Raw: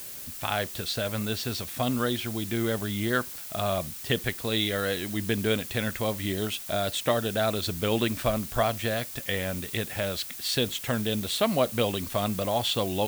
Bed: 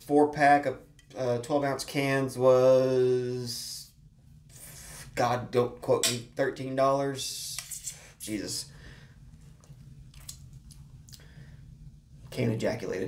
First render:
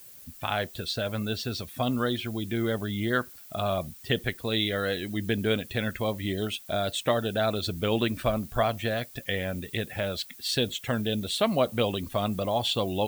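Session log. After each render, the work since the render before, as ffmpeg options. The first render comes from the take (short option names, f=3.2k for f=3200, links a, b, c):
-af "afftdn=nr=12:nf=-40"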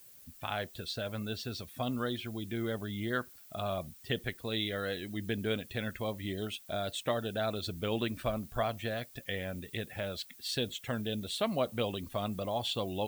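-af "volume=-7dB"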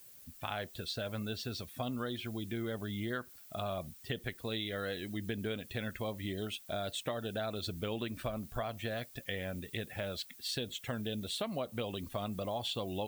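-af "acompressor=threshold=-33dB:ratio=6"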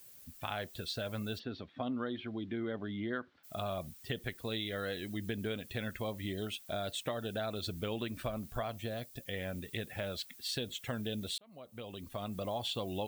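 -filter_complex "[0:a]asplit=3[a][b][c];[a]afade=t=out:st=1.38:d=0.02[d];[b]highpass=110,equalizer=f=130:t=q:w=4:g=-5,equalizer=f=280:t=q:w=4:g=5,equalizer=f=2.6k:t=q:w=4:g=-6,lowpass=f=3.3k:w=0.5412,lowpass=f=3.3k:w=1.3066,afade=t=in:st=1.38:d=0.02,afade=t=out:st=3.43:d=0.02[e];[c]afade=t=in:st=3.43:d=0.02[f];[d][e][f]amix=inputs=3:normalize=0,asettb=1/sr,asplit=3[g][h][i];[g]atrim=end=8.774[j];[h]atrim=start=8.77:end=9.33,asetpts=PTS-STARTPTS,afade=t=in:d=0.004:c=qsin,afade=t=out:st=0.556:d=0.004:c=qsin,equalizer=f=1.7k:w=0.78:g=-7[k];[i]atrim=start=9.326[l];[j][k]acrossfade=d=0.004:c1=hsin:c2=qsin[m];[m][l]acrossfade=d=0.004:c1=qsin:c2=hsin,asplit=2[n][o];[n]atrim=end=11.38,asetpts=PTS-STARTPTS,afade=t=out:st=11.376:d=0.004:c=hsin[p];[o]atrim=start=11.38,asetpts=PTS-STARTPTS,afade=t=in:d=1.1[q];[p][q]concat=n=2:v=0:a=1"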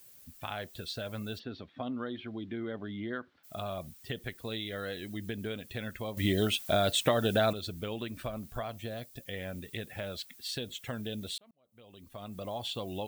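-filter_complex "[0:a]asplit=4[a][b][c][d];[a]atrim=end=6.172[e];[b]atrim=start=6.168:end=7.532,asetpts=PTS-STARTPTS,volume=10.5dB[f];[c]atrim=start=7.528:end=11.51,asetpts=PTS-STARTPTS,afade=t=out:st=3.978:d=0.004:c=hsin[g];[d]atrim=start=11.51,asetpts=PTS-STARTPTS,afade=t=in:d=1.11[h];[e][f]acrossfade=d=0.004:c1=hsin:c2=hsin[i];[g][h]concat=n=2:v=0:a=1[j];[i][j]acrossfade=d=0.004:c1=hsin:c2=hsin"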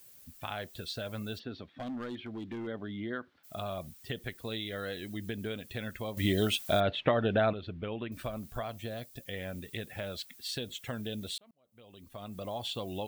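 -filter_complex "[0:a]asettb=1/sr,asplit=3[a][b][c];[a]atrim=end=1.744[d];[b]atrim=start=1.74:end=2.67,asetpts=PTS-STARTPTS,afade=t=in:d=0.004:c=qsin,afade=t=out:st=0.926:d=0.004:c=qsin,asoftclip=type=hard:threshold=-34.5dB[e];[c]atrim=start=2.666[f];[d][e]acrossfade=d=0.004:c1=hsin:c2=qsin[g];[g][f]acrossfade=d=0.004:c1=qsin:c2=hsin,asettb=1/sr,asplit=3[h][i][j];[h]atrim=end=6.804[k];[i]atrim=start=6.8:end=8.12,asetpts=PTS-STARTPTS,afade=t=in:d=0.004:c=qsin,afade=t=out:st=1.316:d=0.004:c=qsin,lowpass=f=2.9k:w=0.5412,lowpass=f=2.9k:w=1.3066[l];[j]atrim=start=8.116[m];[k][l]acrossfade=d=0.004:c1=hsin:c2=qsin[n];[n][m]acrossfade=d=0.004:c1=qsin:c2=hsin"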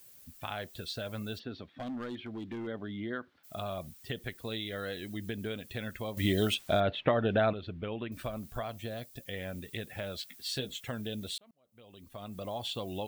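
-filter_complex "[0:a]asettb=1/sr,asplit=3[a][b][c];[a]atrim=end=6.544[d];[b]atrim=start=6.54:end=7.29,asetpts=PTS-STARTPTS,afade=t=in:d=0.004:c=qsin,afade=t=out:st=0.746:d=0.004:c=qsin,lowpass=f=3.7k:p=1[e];[c]atrim=start=7.286[f];[d][e]acrossfade=d=0.004:c1=hsin:c2=qsin[g];[g][f]acrossfade=d=0.004:c1=qsin:c2=hsin,asettb=1/sr,asplit=3[h][i][j];[h]atrim=end=10.214[k];[i]atrim=start=10.21:end=10.81,asetpts=PTS-STARTPTS,afade=t=in:d=0.004:c=qsin,afade=t=out:st=0.596:d=0.004:c=qsin,asplit=2[l][m];[m]adelay=15,volume=-5dB[n];[l][n]amix=inputs=2:normalize=0,atrim=end_sample=26460[o];[j]atrim=start=10.806[p];[k][o]acrossfade=d=0.004:c1=hsin:c2=qsin[q];[q][p]acrossfade=d=0.004:c1=qsin:c2=hsin"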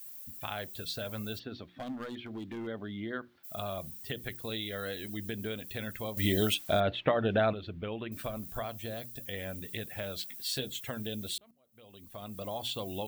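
-af "highshelf=f=9.6k:g=10.5,bandreject=f=60:t=h:w=6,bandreject=f=120:t=h:w=6,bandreject=f=180:t=h:w=6,bandreject=f=240:t=h:w=6,bandreject=f=300:t=h:w=6,bandreject=f=360:t=h:w=6"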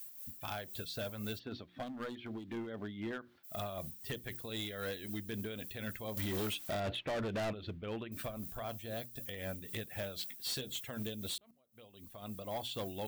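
-af "tremolo=f=3.9:d=0.56,asoftclip=type=hard:threshold=-34dB"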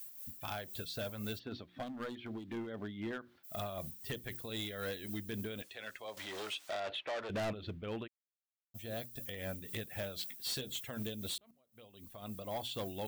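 -filter_complex "[0:a]asettb=1/sr,asplit=3[a][b][c];[a]atrim=end=5.624[d];[b]atrim=start=5.62:end=7.3,asetpts=PTS-STARTPTS,afade=t=in:d=0.004:c=qsin,afade=t=out:st=1.676:d=0.004:c=qsin,acrossover=split=420 7900:gain=0.0891 1 0.158[e][f][g];[e][f][g]amix=inputs=3:normalize=0[h];[c]atrim=start=7.296[i];[d][h]acrossfade=d=0.004:c1=hsin:c2=qsin[j];[j][i]acrossfade=d=0.004:c1=qsin:c2=hsin,asplit=3[k][l][m];[k]afade=t=out:st=8.06:d=0.02[n];[l]acrusher=bits=2:mix=0:aa=0.5,afade=t=in:st=8.06:d=0.02,afade=t=out:st=8.74:d=0.02[o];[m]afade=t=in:st=8.74:d=0.02[p];[n][o][p]amix=inputs=3:normalize=0"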